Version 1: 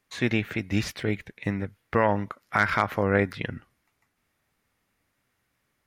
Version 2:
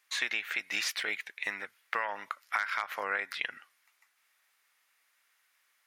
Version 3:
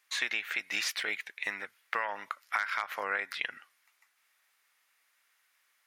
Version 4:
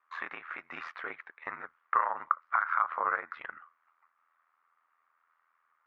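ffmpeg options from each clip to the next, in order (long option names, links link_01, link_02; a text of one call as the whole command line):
ffmpeg -i in.wav -af "highpass=1300,acompressor=threshold=-33dB:ratio=12,volume=5.5dB" out.wav
ffmpeg -i in.wav -af anull out.wav
ffmpeg -i in.wav -filter_complex "[0:a]asplit=2[link_01][link_02];[link_02]asoftclip=type=hard:threshold=-24dB,volume=-6dB[link_03];[link_01][link_03]amix=inputs=2:normalize=0,lowpass=frequency=1200:width_type=q:width=5,aeval=exprs='val(0)*sin(2*PI*41*n/s)':channel_layout=same,volume=-3.5dB" out.wav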